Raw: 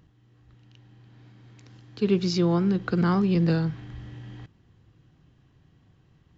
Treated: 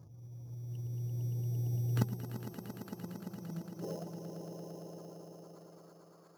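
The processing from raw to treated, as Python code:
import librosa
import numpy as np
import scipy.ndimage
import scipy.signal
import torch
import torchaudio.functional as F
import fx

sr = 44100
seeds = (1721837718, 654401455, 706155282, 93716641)

p1 = fx.halfwave_hold(x, sr)
p2 = fx.env_lowpass_down(p1, sr, base_hz=780.0, full_db=-16.0)
p3 = fx.gate_flip(p2, sr, shuts_db=-21.0, range_db=-30)
p4 = fx.doubler(p3, sr, ms=43.0, db=-2.0, at=(3.56, 4.07), fade=0.02)
p5 = p4 + fx.echo_opening(p4, sr, ms=108, hz=200, octaves=2, feedback_pct=70, wet_db=-6, dry=0)
p6 = fx.spec_gate(p5, sr, threshold_db=-25, keep='strong')
p7 = fx.filter_sweep_highpass(p6, sr, from_hz=110.0, to_hz=1200.0, start_s=3.36, end_s=4.26, q=3.8)
p8 = fx.sample_hold(p7, sr, seeds[0], rate_hz=5800.0, jitter_pct=0)
p9 = fx.echo_swell(p8, sr, ms=114, loudest=5, wet_db=-7.0)
y = fx.upward_expand(p9, sr, threshold_db=-38.0, expansion=1.5)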